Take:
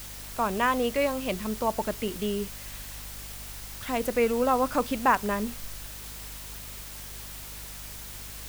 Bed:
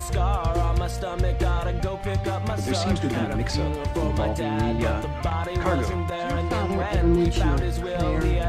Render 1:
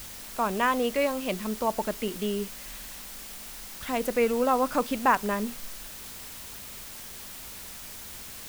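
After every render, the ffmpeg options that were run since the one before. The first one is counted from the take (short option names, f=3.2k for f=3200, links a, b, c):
-af "bandreject=f=50:t=h:w=4,bandreject=f=100:t=h:w=4,bandreject=f=150:t=h:w=4"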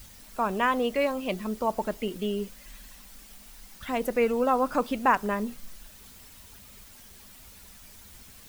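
-af "afftdn=nr=10:nf=-42"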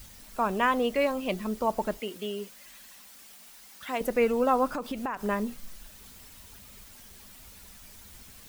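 -filter_complex "[0:a]asettb=1/sr,asplit=3[a][b][c];[a]atrim=end=1.994[d];[b]atrim=start=1.99:end=4.01,asetpts=PTS-STARTPTS,afade=t=in:d=0.004:c=qsin,afade=t=out:st=2.016:d=0.004:c=qsin,highpass=f=470:p=1[e];[c]atrim=start=4.006[f];[d][e]acrossfade=d=0.004:c1=hsin:c2=qsin[g];[g][f]acrossfade=d=0.004:c1=qsin:c2=hsin,asettb=1/sr,asplit=3[h][i][j];[h]atrim=end=4.664[k];[i]atrim=start=4.66:end=5.22,asetpts=PTS-STARTPTS,afade=t=in:d=0.004:c=qsin,afade=t=out:st=0.556:d=0.004:c=qsin,acompressor=threshold=-28dB:ratio=10:attack=3.2:release=140:knee=1:detection=peak[l];[j]atrim=start=5.216[m];[k][l]acrossfade=d=0.004:c1=hsin:c2=qsin[n];[n][m]acrossfade=d=0.004:c1=qsin:c2=hsin"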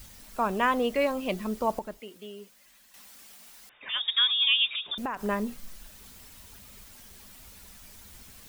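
-filter_complex "[0:a]asettb=1/sr,asplit=3[a][b][c];[a]atrim=end=3.694[d];[b]atrim=start=3.69:end=4.98,asetpts=PTS-STARTPTS,afade=t=in:d=0.004:c=qsin,afade=t=out:st=1.286:d=0.004:c=qsin,lowpass=f=3.2k:t=q:w=0.5098,lowpass=f=3.2k:t=q:w=0.6013,lowpass=f=3.2k:t=q:w=0.9,lowpass=f=3.2k:t=q:w=2.563,afreqshift=-3800[e];[c]atrim=start=4.976[f];[d][e]acrossfade=d=0.004:c1=hsin:c2=qsin[g];[g][f]acrossfade=d=0.004:c1=qsin:c2=hsin,asplit=3[h][i][j];[h]atrim=end=1.792[k];[i]atrim=start=1.788:end=2.942,asetpts=PTS-STARTPTS,volume=-8.5dB[l];[j]atrim=start=2.938[m];[k][l]acrossfade=d=0.004:c1=hsin:c2=hsin[n];[n][m]acrossfade=d=0.004:c1=hsin:c2=hsin"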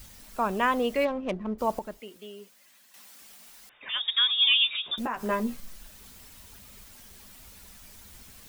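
-filter_complex "[0:a]asplit=3[a][b][c];[a]afade=t=out:st=1.04:d=0.02[d];[b]adynamicsmooth=sensitivity=2:basefreq=840,afade=t=in:st=1.04:d=0.02,afade=t=out:st=1.58:d=0.02[e];[c]afade=t=in:st=1.58:d=0.02[f];[d][e][f]amix=inputs=3:normalize=0,asettb=1/sr,asplit=3[g][h][i];[g]atrim=end=2.164[j];[h]atrim=start=2.16:end=3.21,asetpts=PTS-STARTPTS,afade=t=in:d=0.004:c=qsin,afade=t=out:st=1.046:d=0.004:c=qsin,highpass=f=170:p=1[k];[i]atrim=start=3.206[l];[j][k]acrossfade=d=0.004:c1=hsin:c2=qsin[m];[m][l]acrossfade=d=0.004:c1=qsin:c2=hsin,asettb=1/sr,asplit=3[n][o][p];[n]atrim=end=4.334[q];[o]atrim=start=4.33:end=5.6,asetpts=PTS-STARTPTS,afade=t=in:d=0.004:c=qsin,afade=t=out:st=1.266:d=0.004:c=qsin,asplit=2[r][s];[s]adelay=13,volume=-4dB[t];[r][t]amix=inputs=2:normalize=0,atrim=end_sample=56007[u];[p]atrim=start=5.596[v];[q][u]acrossfade=d=0.004:c1=hsin:c2=qsin[w];[w][v]acrossfade=d=0.004:c1=qsin:c2=hsin"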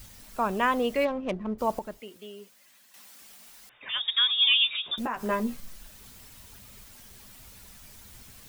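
-af "equalizer=f=120:w=5.9:g=8"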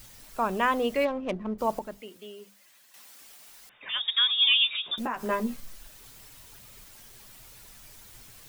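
-af "equalizer=f=67:t=o:w=0.62:g=-9.5,bandreject=f=50:t=h:w=6,bandreject=f=100:t=h:w=6,bandreject=f=150:t=h:w=6,bandreject=f=200:t=h:w=6,bandreject=f=250:t=h:w=6"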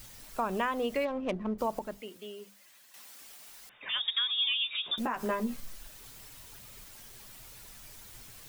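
-af "acompressor=threshold=-27dB:ratio=6"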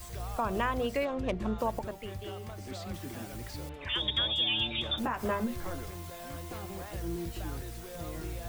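-filter_complex "[1:a]volume=-16.5dB[a];[0:a][a]amix=inputs=2:normalize=0"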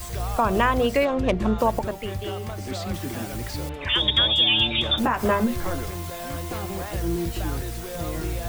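-af "volume=10dB"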